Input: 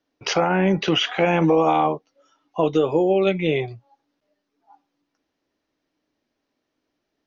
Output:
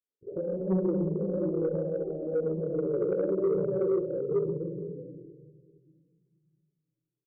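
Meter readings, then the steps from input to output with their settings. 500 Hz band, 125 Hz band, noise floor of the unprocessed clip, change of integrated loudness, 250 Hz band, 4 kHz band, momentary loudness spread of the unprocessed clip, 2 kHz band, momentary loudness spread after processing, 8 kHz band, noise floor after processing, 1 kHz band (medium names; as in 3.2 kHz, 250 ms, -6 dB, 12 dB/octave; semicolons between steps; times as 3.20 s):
-6.0 dB, -6.5 dB, -79 dBFS, -9.5 dB, -7.5 dB, under -40 dB, 8 LU, under -25 dB, 11 LU, no reading, under -85 dBFS, -26.5 dB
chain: chunks repeated in reverse 488 ms, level -2 dB; on a send: loudspeakers at several distances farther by 36 m -1 dB, 47 m -3 dB, 92 m -5 dB; on the sum: peak limiter -9 dBFS, peak gain reduction 7.5 dB; flange 1.4 Hz, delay 5.7 ms, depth 7.1 ms, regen -24%; gate -46 dBFS, range -22 dB; bass shelf 150 Hz -11.5 dB; simulated room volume 1900 m³, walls mixed, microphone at 1.3 m; dynamic bell 230 Hz, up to -5 dB, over -36 dBFS, Q 0.89; rippled Chebyshev low-pass 560 Hz, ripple 3 dB; in parallel at +3 dB: compression 10:1, threshold -35 dBFS, peak gain reduction 16 dB; on the sum: flange 0.54 Hz, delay 1.4 ms, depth 4.6 ms, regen +32%; saturation -18.5 dBFS, distortion -20 dB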